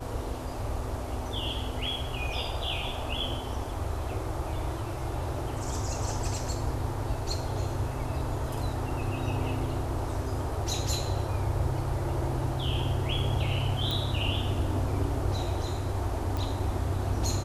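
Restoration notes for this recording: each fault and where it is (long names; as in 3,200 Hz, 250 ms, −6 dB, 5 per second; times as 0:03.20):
0:13.91: click
0:16.37: click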